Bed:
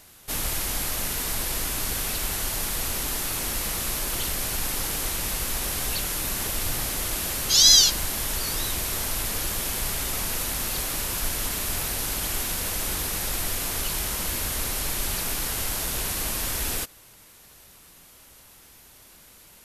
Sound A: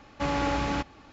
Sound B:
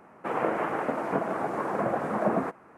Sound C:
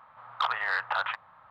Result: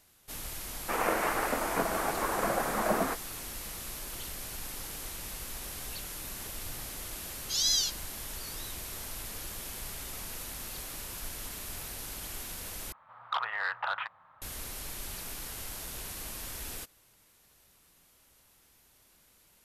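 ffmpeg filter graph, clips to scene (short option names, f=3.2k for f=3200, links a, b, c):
-filter_complex "[0:a]volume=-12.5dB[a];[2:a]crystalizer=i=9.5:c=0[b];[a]asplit=2[c][d];[c]atrim=end=12.924[e];[3:a]atrim=end=1.5,asetpts=PTS-STARTPTS,volume=-4dB[f];[d]atrim=start=14.416[g];[b]atrim=end=2.77,asetpts=PTS-STARTPTS,volume=-5.5dB,afade=t=in:d=0.004:c=hsin,afade=t=out:st=2.766:d=0.004:c=hsin,adelay=640[h];[e][f]acrossfade=d=0.004:c1=hsin:c2=hsin[i];[i][g]acrossfade=d=0.004:c1=hsin:c2=hsin[j];[j][h]amix=inputs=2:normalize=0"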